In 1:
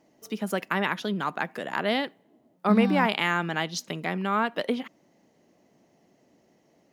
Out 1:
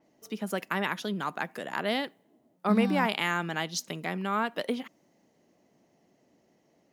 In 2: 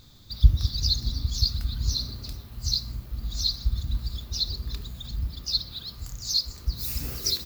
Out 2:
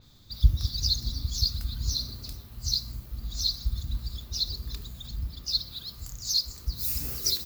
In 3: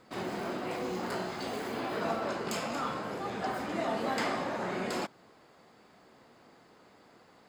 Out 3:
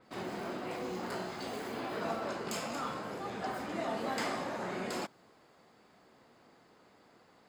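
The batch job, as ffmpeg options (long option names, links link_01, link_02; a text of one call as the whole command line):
ffmpeg -i in.wav -af "adynamicequalizer=threshold=0.00708:dfrequency=5200:dqfactor=0.7:tfrequency=5200:tqfactor=0.7:attack=5:release=100:ratio=0.375:range=3.5:mode=boostabove:tftype=highshelf,volume=-3.5dB" out.wav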